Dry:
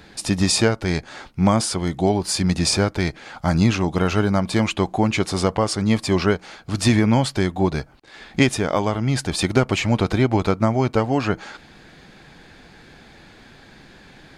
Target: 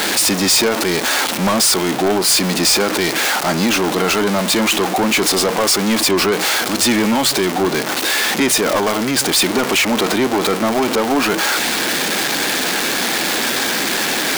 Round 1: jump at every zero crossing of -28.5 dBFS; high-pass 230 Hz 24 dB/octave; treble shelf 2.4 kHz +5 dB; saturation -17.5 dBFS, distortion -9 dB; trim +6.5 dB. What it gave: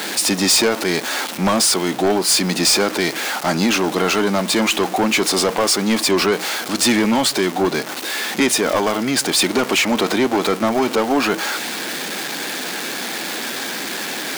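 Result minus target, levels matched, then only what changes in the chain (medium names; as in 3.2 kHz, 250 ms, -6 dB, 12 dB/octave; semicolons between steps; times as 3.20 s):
jump at every zero crossing: distortion -8 dB
change: jump at every zero crossing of -18.5 dBFS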